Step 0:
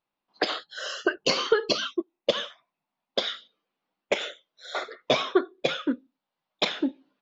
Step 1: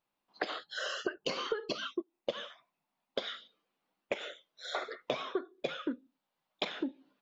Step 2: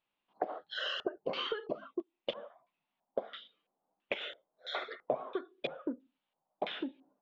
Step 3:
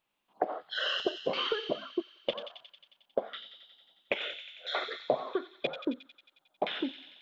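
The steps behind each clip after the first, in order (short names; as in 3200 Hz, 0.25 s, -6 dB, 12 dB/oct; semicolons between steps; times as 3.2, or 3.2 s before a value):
dynamic EQ 5400 Hz, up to -6 dB, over -42 dBFS, Q 0.84; compressor 6:1, threshold -32 dBFS, peak gain reduction 15 dB
LFO low-pass square 1.5 Hz 760–3100 Hz; gain -3 dB
thin delay 90 ms, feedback 71%, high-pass 3300 Hz, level -4 dB; gain +4.5 dB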